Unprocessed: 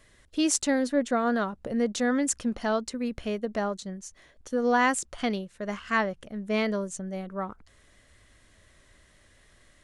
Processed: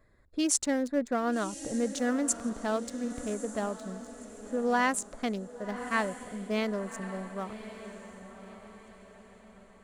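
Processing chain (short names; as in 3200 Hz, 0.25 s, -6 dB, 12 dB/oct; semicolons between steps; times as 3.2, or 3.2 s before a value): Wiener smoothing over 15 samples; high shelf 8700 Hz +8.5 dB; on a send: diffused feedback echo 1.109 s, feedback 42%, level -12 dB; on the sum: gain -3.5 dB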